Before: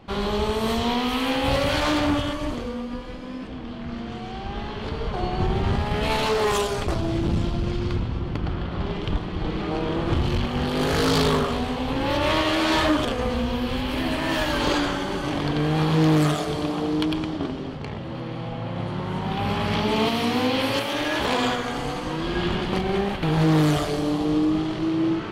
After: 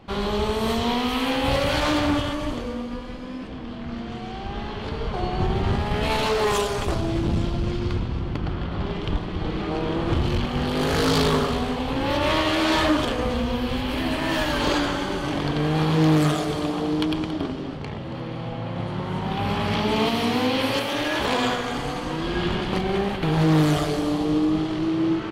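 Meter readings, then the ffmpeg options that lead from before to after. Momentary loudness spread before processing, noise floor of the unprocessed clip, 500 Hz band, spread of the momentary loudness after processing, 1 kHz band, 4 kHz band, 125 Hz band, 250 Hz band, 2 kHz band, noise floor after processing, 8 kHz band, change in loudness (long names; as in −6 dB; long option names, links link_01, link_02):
11 LU, −33 dBFS, 0.0 dB, 11 LU, 0.0 dB, 0.0 dB, 0.0 dB, +0.5 dB, 0.0 dB, −33 dBFS, 0.0 dB, 0.0 dB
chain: -af "aecho=1:1:278:0.224"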